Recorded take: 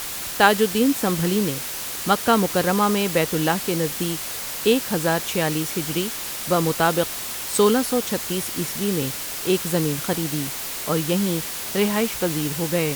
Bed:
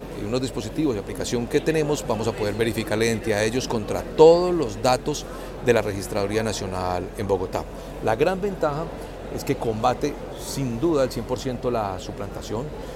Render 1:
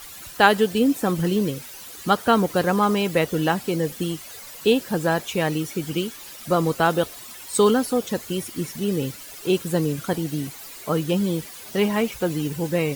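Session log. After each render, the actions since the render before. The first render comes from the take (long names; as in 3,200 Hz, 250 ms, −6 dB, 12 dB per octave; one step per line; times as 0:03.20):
broadband denoise 13 dB, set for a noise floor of −31 dBFS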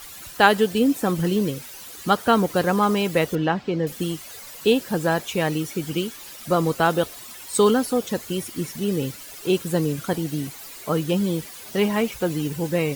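0:03.35–0:03.87: high-frequency loss of the air 190 metres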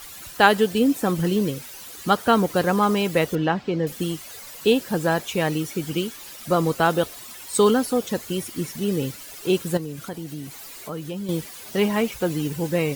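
0:09.77–0:11.29: downward compressor 2 to 1, threshold −35 dBFS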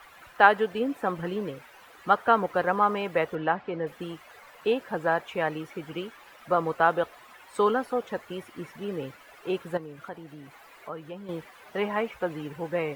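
three-way crossover with the lows and the highs turned down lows −13 dB, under 510 Hz, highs −23 dB, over 2,300 Hz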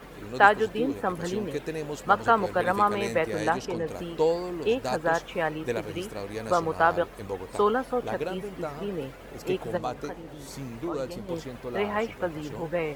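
mix in bed −11.5 dB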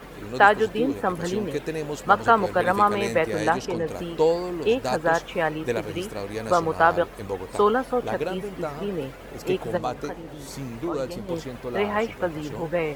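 level +3.5 dB
brickwall limiter −2 dBFS, peak gain reduction 3 dB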